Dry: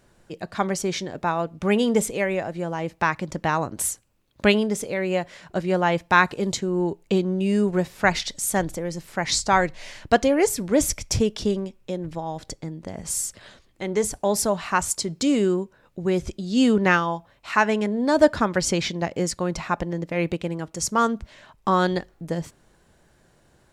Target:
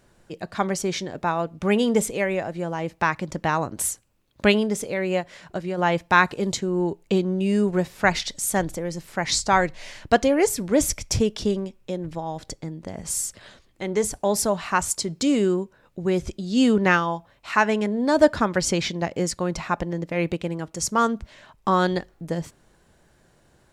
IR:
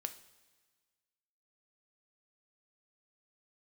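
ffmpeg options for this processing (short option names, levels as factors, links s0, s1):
-filter_complex "[0:a]asplit=3[s0][s1][s2];[s0]afade=t=out:st=5.2:d=0.02[s3];[s1]acompressor=threshold=0.0562:ratio=6,afade=t=in:st=5.2:d=0.02,afade=t=out:st=5.77:d=0.02[s4];[s2]afade=t=in:st=5.77:d=0.02[s5];[s3][s4][s5]amix=inputs=3:normalize=0"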